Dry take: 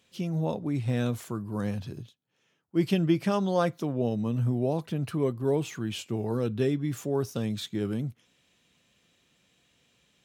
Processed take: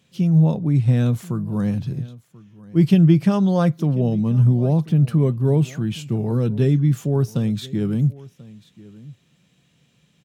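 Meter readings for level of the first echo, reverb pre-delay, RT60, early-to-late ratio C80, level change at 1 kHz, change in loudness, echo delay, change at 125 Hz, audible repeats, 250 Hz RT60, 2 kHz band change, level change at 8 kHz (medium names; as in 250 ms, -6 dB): -21.0 dB, no reverb, no reverb, no reverb, +2.5 dB, +10.0 dB, 1037 ms, +13.5 dB, 1, no reverb, +2.0 dB, no reading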